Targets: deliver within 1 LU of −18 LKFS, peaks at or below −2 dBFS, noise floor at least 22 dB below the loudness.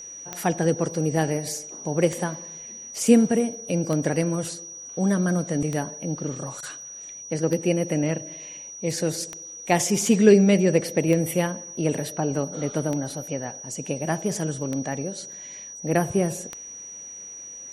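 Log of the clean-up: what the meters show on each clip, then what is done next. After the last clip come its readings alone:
number of clicks 10; interfering tone 5,800 Hz; level of the tone −37 dBFS; integrated loudness −24.5 LKFS; sample peak −3.5 dBFS; target loudness −18.0 LKFS
→ click removal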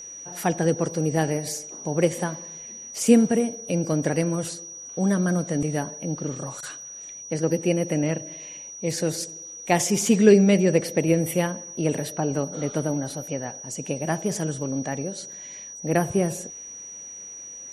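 number of clicks 0; interfering tone 5,800 Hz; level of the tone −37 dBFS
→ notch filter 5,800 Hz, Q 30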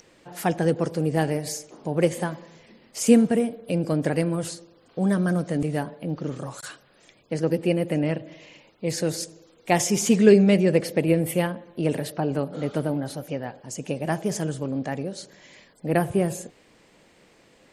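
interfering tone none found; integrated loudness −24.5 LKFS; sample peak −3.5 dBFS; target loudness −18.0 LKFS
→ level +6.5 dB
brickwall limiter −2 dBFS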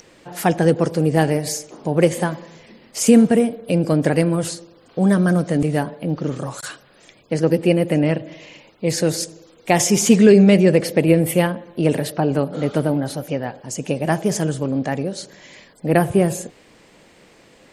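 integrated loudness −18.5 LKFS; sample peak −2.0 dBFS; background noise floor −51 dBFS

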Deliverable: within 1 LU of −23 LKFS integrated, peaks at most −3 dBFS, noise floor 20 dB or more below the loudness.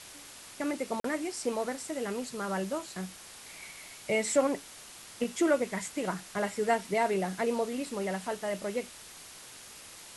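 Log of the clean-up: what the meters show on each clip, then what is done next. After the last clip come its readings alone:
number of dropouts 1; longest dropout 43 ms; background noise floor −49 dBFS; target noise floor −52 dBFS; integrated loudness −32.0 LKFS; sample peak −14.5 dBFS; target loudness −23.0 LKFS
→ repair the gap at 0:01.00, 43 ms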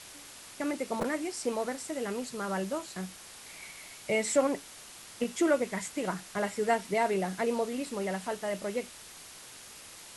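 number of dropouts 0; background noise floor −49 dBFS; target noise floor −52 dBFS
→ broadband denoise 6 dB, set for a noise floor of −49 dBFS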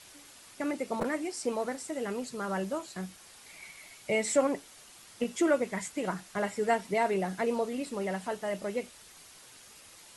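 background noise floor −54 dBFS; integrated loudness −32.0 LKFS; sample peak −14.5 dBFS; target loudness −23.0 LKFS
→ level +9 dB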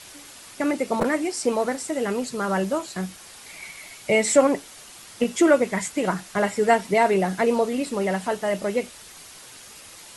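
integrated loudness −23.0 LKFS; sample peak −5.5 dBFS; background noise floor −45 dBFS

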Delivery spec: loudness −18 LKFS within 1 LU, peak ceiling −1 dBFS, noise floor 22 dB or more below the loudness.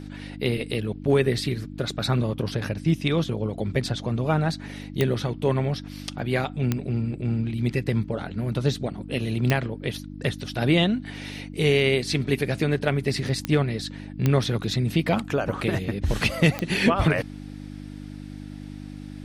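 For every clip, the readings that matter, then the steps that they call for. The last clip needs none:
number of clicks 6; mains hum 50 Hz; hum harmonics up to 300 Hz; level of the hum −37 dBFS; integrated loudness −25.0 LKFS; sample peak −7.5 dBFS; target loudness −18.0 LKFS
→ click removal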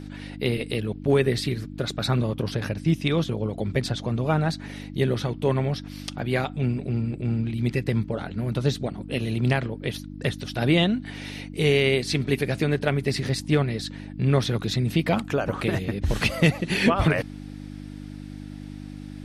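number of clicks 0; mains hum 50 Hz; hum harmonics up to 300 Hz; level of the hum −37 dBFS
→ hum removal 50 Hz, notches 6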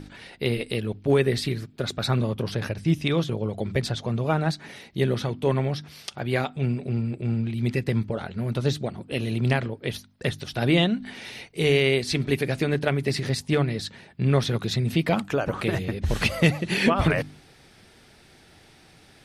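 mains hum none found; integrated loudness −25.5 LKFS; sample peak −7.5 dBFS; target loudness −18.0 LKFS
→ level +7.5 dB
brickwall limiter −1 dBFS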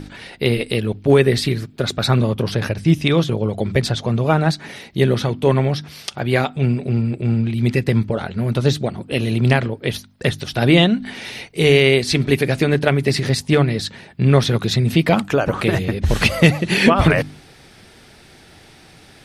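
integrated loudness −18.0 LKFS; sample peak −1.0 dBFS; background noise floor −46 dBFS

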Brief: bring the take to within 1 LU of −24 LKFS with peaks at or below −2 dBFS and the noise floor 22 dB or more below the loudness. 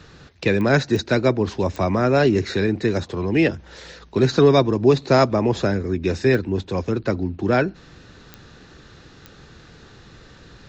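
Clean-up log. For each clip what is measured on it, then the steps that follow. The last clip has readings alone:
number of clicks 6; integrated loudness −20.0 LKFS; sample peak −3.5 dBFS; target loudness −24.0 LKFS
→ click removal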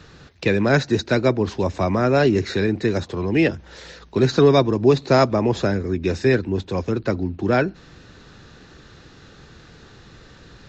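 number of clicks 0; integrated loudness −20.0 LKFS; sample peak −3.5 dBFS; target loudness −24.0 LKFS
→ level −4 dB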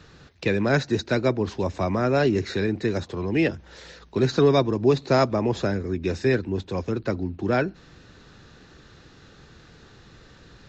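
integrated loudness −24.0 LKFS; sample peak −7.5 dBFS; background noise floor −51 dBFS

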